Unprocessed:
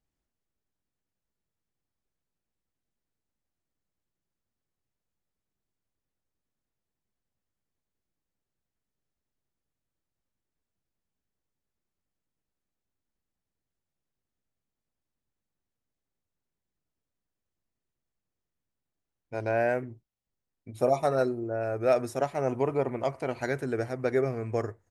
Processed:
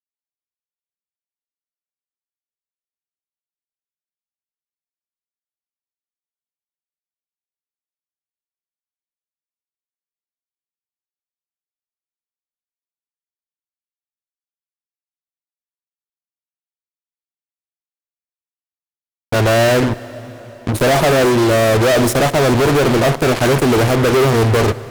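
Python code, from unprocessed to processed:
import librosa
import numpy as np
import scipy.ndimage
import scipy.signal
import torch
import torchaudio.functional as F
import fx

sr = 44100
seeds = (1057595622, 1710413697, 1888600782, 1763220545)

y = fx.peak_eq(x, sr, hz=3500.0, db=-6.5, octaves=2.0)
y = fx.fuzz(y, sr, gain_db=51.0, gate_db=-44.0)
y = fx.rev_plate(y, sr, seeds[0], rt60_s=4.9, hf_ratio=0.8, predelay_ms=0, drr_db=16.0)
y = F.gain(torch.from_numpy(y), 2.0).numpy()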